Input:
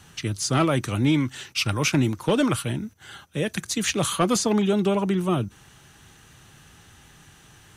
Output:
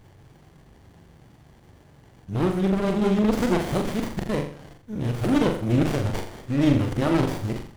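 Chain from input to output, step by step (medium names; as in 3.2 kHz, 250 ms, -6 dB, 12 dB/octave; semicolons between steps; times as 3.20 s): reverse the whole clip; flutter echo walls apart 7.2 m, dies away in 0.5 s; sliding maximum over 33 samples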